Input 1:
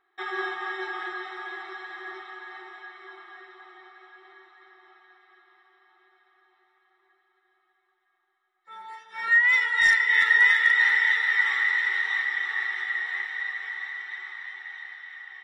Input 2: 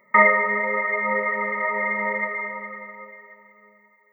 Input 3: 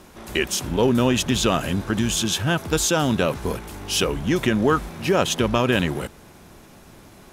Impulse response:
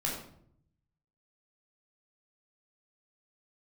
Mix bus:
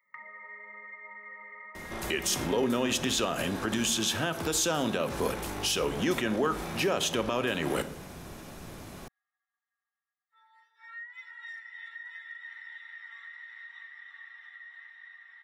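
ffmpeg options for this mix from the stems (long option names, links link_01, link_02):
-filter_complex "[0:a]highshelf=frequency=4000:gain=-10.5,aecho=1:1:4.3:0.86,adelay=1650,volume=-17.5dB[link_01];[1:a]acompressor=threshold=-25dB:ratio=6,volume=-13.5dB,asplit=2[link_02][link_03];[link_03]volume=-17dB[link_04];[2:a]alimiter=limit=-17dB:level=0:latency=1:release=109,adelay=1750,volume=0.5dB,asplit=2[link_05][link_06];[link_06]volume=-14dB[link_07];[link_01][link_02]amix=inputs=2:normalize=0,highpass=1300,acompressor=threshold=-45dB:ratio=2.5,volume=0dB[link_08];[3:a]atrim=start_sample=2205[link_09];[link_04][link_07]amix=inputs=2:normalize=0[link_10];[link_10][link_09]afir=irnorm=-1:irlink=0[link_11];[link_05][link_08][link_11]amix=inputs=3:normalize=0,acrossover=split=240[link_12][link_13];[link_12]acompressor=threshold=-40dB:ratio=6[link_14];[link_14][link_13]amix=inputs=2:normalize=0,alimiter=limit=-17.5dB:level=0:latency=1:release=159"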